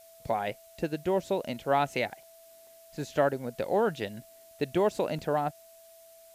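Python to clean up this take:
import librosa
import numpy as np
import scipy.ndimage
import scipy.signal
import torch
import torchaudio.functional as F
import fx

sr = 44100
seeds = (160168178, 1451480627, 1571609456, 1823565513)

y = fx.notch(x, sr, hz=660.0, q=30.0)
y = fx.fix_interpolate(y, sr, at_s=(2.23, 2.67, 5.19), length_ms=2.0)
y = fx.noise_reduce(y, sr, print_start_s=2.23, print_end_s=2.73, reduce_db=19.0)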